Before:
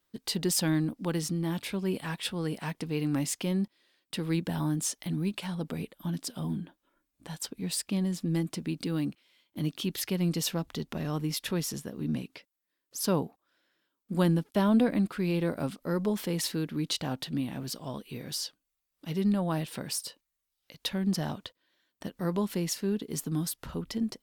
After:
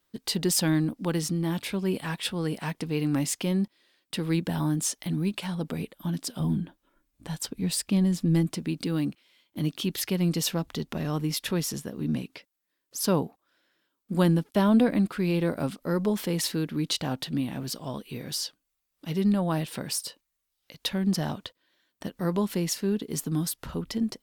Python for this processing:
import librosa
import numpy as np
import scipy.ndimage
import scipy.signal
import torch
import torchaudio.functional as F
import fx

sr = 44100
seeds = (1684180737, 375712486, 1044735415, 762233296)

y = fx.low_shelf(x, sr, hz=130.0, db=10.0, at=(6.4, 8.53))
y = F.gain(torch.from_numpy(y), 3.0).numpy()